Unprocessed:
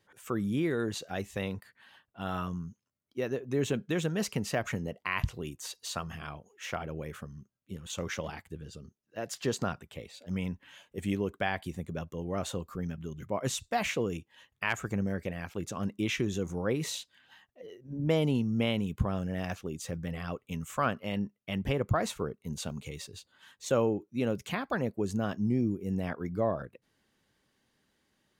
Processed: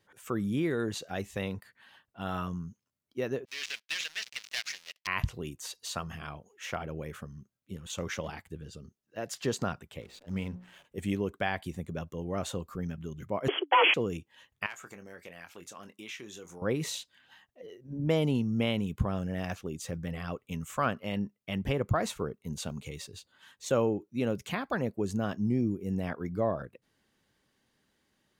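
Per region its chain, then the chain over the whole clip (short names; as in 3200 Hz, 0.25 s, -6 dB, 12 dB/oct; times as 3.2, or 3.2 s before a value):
3.45–5.07 switching dead time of 0.16 ms + Chebyshev band-pass 2300–5700 Hz + sample leveller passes 3
10.01–10.85 notches 60/120/180/240/300/360/420/480/540 Hz + backlash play -50 dBFS
13.48–13.94 sample leveller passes 5 + frequency shift +280 Hz + brick-wall FIR low-pass 3400 Hz
14.66–16.62 HPF 1000 Hz 6 dB/oct + compressor 2:1, threshold -45 dBFS + doubler 23 ms -10 dB
whole clip: dry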